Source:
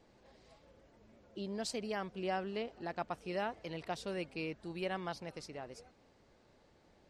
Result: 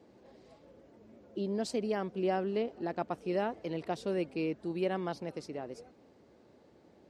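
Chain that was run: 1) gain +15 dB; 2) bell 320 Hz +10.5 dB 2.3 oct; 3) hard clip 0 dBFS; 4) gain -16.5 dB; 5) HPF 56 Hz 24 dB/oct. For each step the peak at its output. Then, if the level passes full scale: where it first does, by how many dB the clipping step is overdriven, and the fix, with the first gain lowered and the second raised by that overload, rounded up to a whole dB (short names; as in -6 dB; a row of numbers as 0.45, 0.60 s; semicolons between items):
-10.0, -3.5, -3.5, -20.0, -19.0 dBFS; no overload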